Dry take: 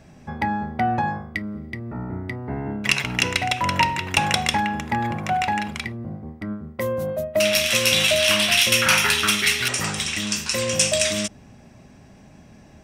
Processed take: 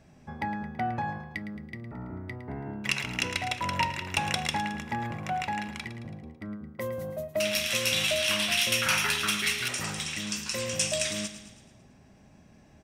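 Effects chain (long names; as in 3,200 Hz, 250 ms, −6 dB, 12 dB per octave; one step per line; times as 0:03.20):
repeating echo 110 ms, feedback 53%, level −12 dB
level −8.5 dB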